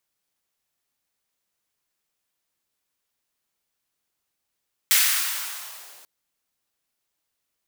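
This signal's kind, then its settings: swept filtered noise white, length 1.14 s highpass, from 1900 Hz, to 430 Hz, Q 1.3, linear, gain ramp -33.5 dB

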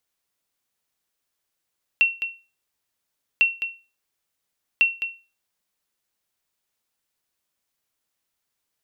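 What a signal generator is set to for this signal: sonar ping 2720 Hz, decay 0.31 s, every 1.40 s, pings 3, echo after 0.21 s, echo -10 dB -9.5 dBFS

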